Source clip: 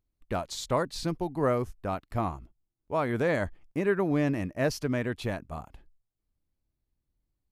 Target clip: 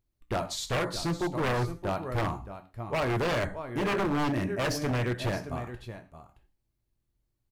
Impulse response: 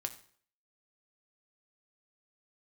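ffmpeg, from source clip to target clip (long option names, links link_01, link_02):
-filter_complex "[0:a]aecho=1:1:621:0.224[link_01];[1:a]atrim=start_sample=2205,afade=type=out:start_time=0.19:duration=0.01,atrim=end_sample=8820[link_02];[link_01][link_02]afir=irnorm=-1:irlink=0,aeval=exprs='0.0531*(abs(mod(val(0)/0.0531+3,4)-2)-1)':channel_layout=same,volume=3dB"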